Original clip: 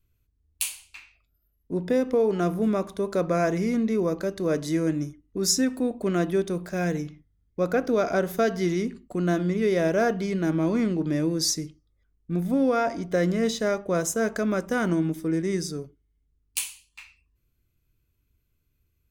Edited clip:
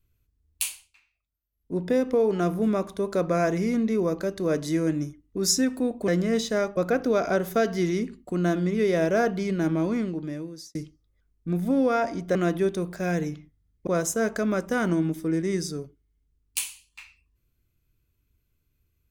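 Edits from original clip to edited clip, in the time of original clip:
0.66–1.77 s: dip -16 dB, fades 0.28 s
6.08–7.60 s: swap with 13.18–13.87 s
10.52–11.58 s: fade out

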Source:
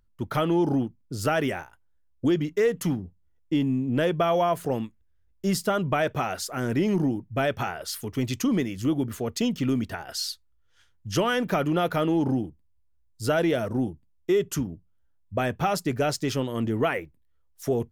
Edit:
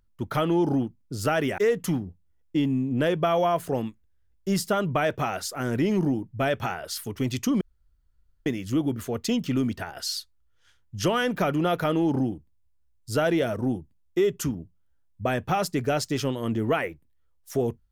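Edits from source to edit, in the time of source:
1.58–2.55 s: delete
8.58 s: insert room tone 0.85 s

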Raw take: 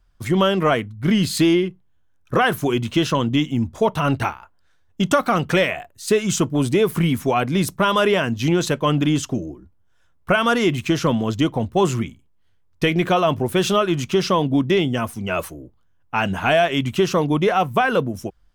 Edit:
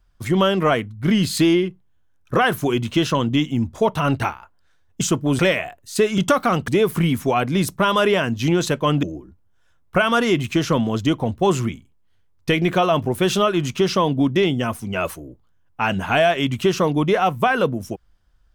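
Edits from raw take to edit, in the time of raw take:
5.01–5.51 s: swap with 6.30–6.68 s
9.03–9.37 s: delete

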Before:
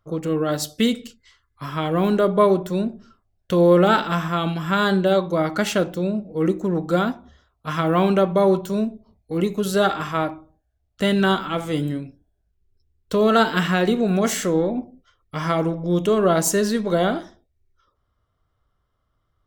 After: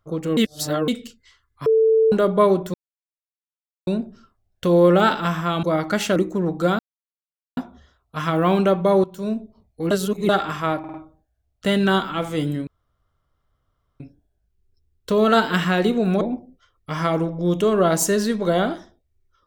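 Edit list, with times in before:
0.37–0.88 s: reverse
1.66–2.12 s: bleep 444 Hz -12.5 dBFS
2.74 s: insert silence 1.13 s
4.50–5.29 s: delete
5.82–6.45 s: delete
7.08 s: insert silence 0.78 s
8.55–8.90 s: fade in, from -17.5 dB
9.42–9.80 s: reverse
10.30 s: stutter 0.05 s, 4 plays
12.03 s: insert room tone 1.33 s
14.24–14.66 s: delete

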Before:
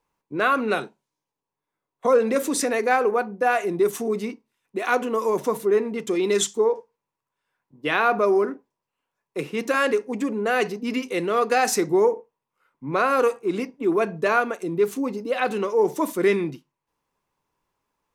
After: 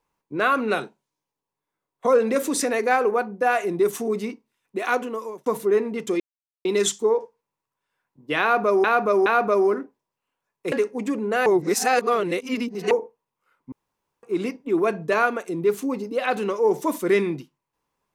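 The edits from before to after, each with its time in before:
4.86–5.46 s: fade out
6.20 s: insert silence 0.45 s
7.97–8.39 s: loop, 3 plays
9.43–9.86 s: delete
10.60–12.05 s: reverse
12.86–13.37 s: room tone

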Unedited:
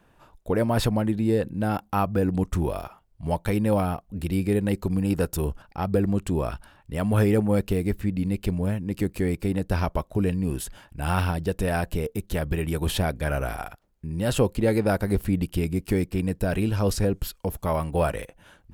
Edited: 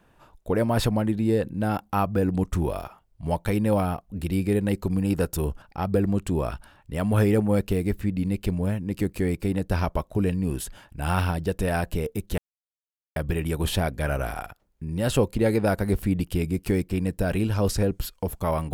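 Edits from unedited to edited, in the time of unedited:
12.38 s: insert silence 0.78 s

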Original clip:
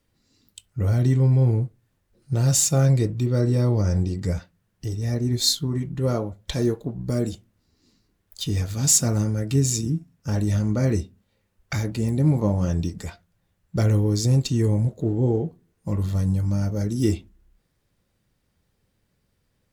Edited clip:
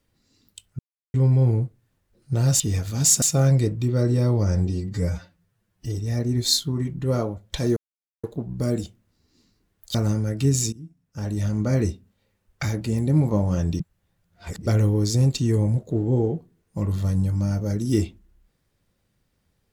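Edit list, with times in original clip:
0.79–1.14 s: mute
4.05–4.90 s: stretch 1.5×
6.72 s: insert silence 0.47 s
8.43–9.05 s: move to 2.60 s
9.83–10.82 s: fade in, from -22 dB
12.90–13.77 s: reverse

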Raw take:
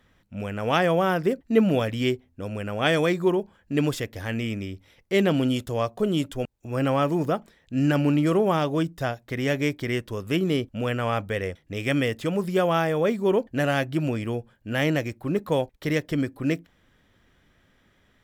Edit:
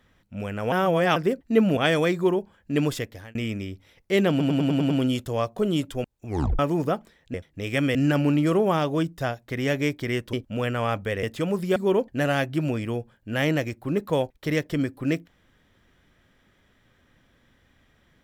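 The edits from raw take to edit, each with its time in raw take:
0.72–1.16 s: reverse
1.77–2.78 s: delete
4.02–4.36 s: fade out
5.31 s: stutter 0.10 s, 7 plays
6.68 s: tape stop 0.32 s
10.13–10.57 s: delete
11.47–12.08 s: move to 7.75 s
12.61–13.15 s: delete

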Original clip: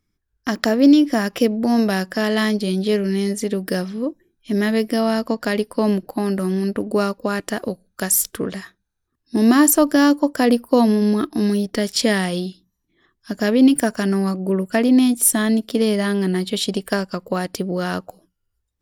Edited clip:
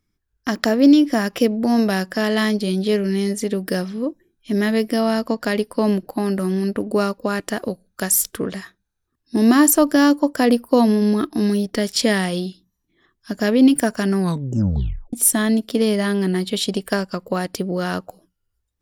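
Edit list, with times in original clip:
14.19 s: tape stop 0.94 s

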